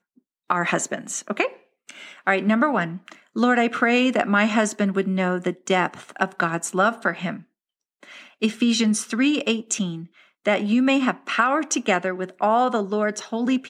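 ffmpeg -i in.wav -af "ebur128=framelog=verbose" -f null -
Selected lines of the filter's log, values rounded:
Integrated loudness:
  I:         -22.2 LUFS
  Threshold: -32.8 LUFS
Loudness range:
  LRA:         3.5 LU
  Threshold: -42.6 LUFS
  LRA low:   -24.6 LUFS
  LRA high:  -21.1 LUFS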